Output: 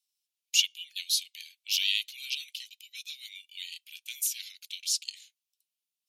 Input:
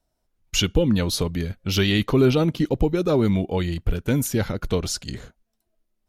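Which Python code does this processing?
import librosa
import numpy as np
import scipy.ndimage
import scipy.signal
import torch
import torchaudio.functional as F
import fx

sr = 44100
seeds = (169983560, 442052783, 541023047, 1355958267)

y = scipy.signal.sosfilt(scipy.signal.butter(8, 2500.0, 'highpass', fs=sr, output='sos'), x)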